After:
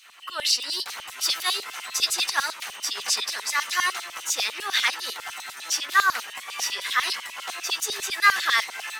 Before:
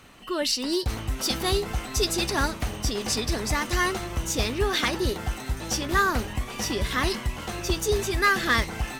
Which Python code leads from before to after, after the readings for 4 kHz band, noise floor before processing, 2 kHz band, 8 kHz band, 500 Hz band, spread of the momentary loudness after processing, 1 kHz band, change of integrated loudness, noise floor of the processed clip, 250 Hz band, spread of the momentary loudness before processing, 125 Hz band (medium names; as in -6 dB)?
+4.0 dB, -38 dBFS, +3.0 dB, +3.5 dB, -14.0 dB, 11 LU, +1.5 dB, +1.5 dB, -42 dBFS, -21.5 dB, 8 LU, under -30 dB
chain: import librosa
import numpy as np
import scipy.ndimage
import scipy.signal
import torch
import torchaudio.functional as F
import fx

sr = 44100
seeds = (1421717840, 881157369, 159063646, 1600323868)

y = fx.filter_lfo_highpass(x, sr, shape='saw_down', hz=10.0, low_hz=820.0, high_hz=4400.0, q=1.4)
y = F.gain(torch.from_numpy(y), 2.5).numpy()